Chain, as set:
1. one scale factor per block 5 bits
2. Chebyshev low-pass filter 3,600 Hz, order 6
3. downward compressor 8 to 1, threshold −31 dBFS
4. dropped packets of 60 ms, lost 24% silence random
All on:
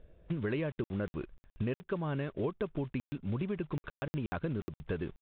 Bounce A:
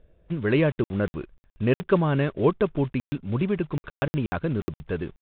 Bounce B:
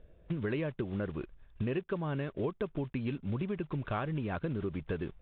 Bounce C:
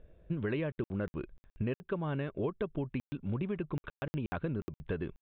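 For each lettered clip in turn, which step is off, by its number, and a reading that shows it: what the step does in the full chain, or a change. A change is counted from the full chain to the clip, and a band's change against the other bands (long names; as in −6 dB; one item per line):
3, average gain reduction 9.0 dB
4, 1 kHz band +2.0 dB
1, distortion level −23 dB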